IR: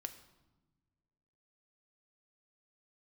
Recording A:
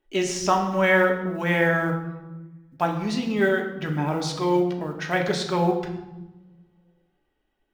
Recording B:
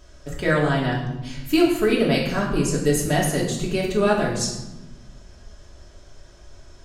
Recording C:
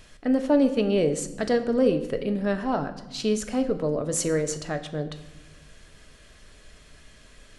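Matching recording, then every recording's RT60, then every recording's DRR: C; 1.1, 1.1, 1.2 seconds; 1.5, −4.5, 7.5 decibels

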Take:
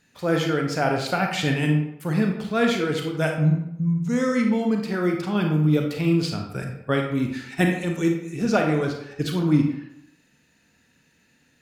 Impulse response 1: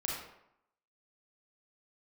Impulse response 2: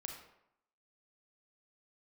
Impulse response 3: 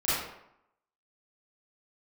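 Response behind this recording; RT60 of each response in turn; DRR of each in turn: 2; 0.80, 0.80, 0.80 seconds; −3.5, 2.0, −13.0 decibels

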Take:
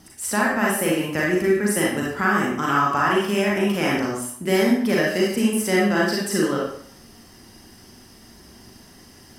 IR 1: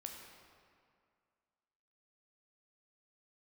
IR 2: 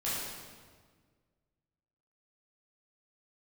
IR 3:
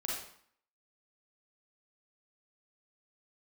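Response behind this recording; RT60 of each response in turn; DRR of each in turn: 3; 2.2, 1.6, 0.60 seconds; 1.5, −10.0, −4.5 decibels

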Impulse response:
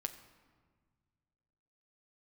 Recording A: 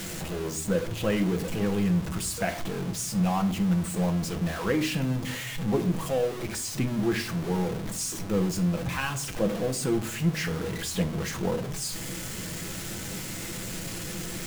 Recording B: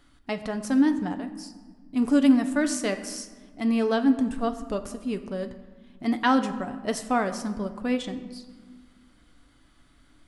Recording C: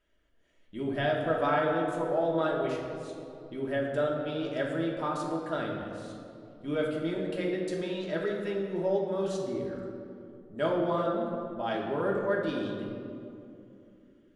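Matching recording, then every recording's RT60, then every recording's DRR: B; non-exponential decay, 1.6 s, 2.8 s; 5.5, 7.0, −2.5 decibels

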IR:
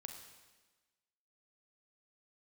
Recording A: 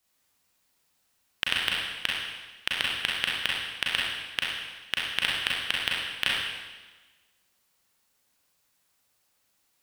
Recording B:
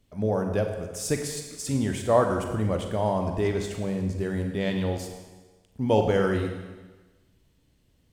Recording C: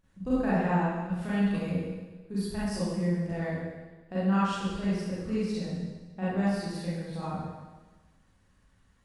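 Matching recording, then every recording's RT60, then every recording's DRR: B; 1.3, 1.3, 1.3 seconds; −4.0, 4.0, −11.0 decibels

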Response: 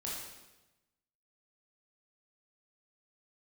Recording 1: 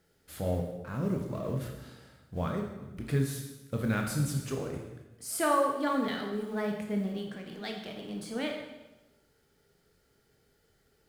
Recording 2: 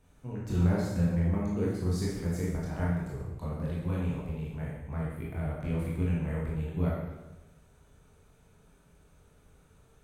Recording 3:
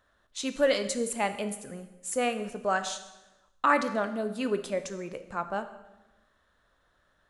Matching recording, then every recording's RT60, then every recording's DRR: 2; 1.0, 1.0, 1.0 seconds; 1.5, −5.5, 9.5 decibels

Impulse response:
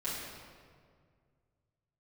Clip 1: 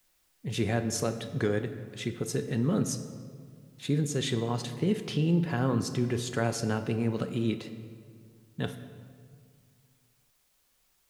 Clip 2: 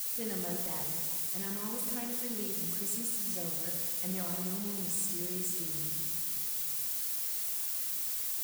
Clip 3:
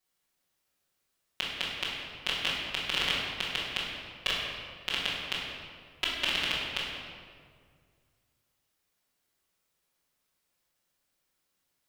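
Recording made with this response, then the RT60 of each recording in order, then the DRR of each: 3; 2.1, 2.0, 2.0 seconds; 8.0, 0.0, −10.0 decibels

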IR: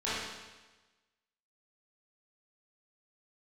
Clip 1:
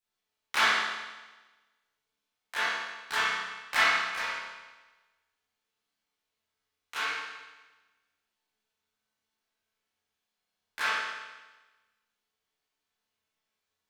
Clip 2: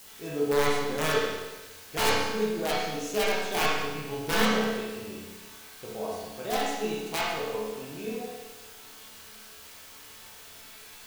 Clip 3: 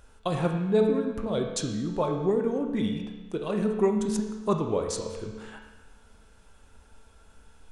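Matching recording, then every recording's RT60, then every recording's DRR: 1; 1.2, 1.2, 1.2 seconds; −12.0, −7.0, 3.0 decibels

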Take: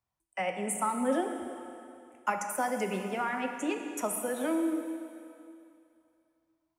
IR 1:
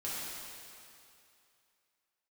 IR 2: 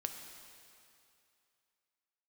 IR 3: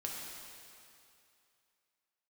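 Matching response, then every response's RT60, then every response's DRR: 2; 2.6, 2.6, 2.6 seconds; −9.0, 4.5, −3.0 decibels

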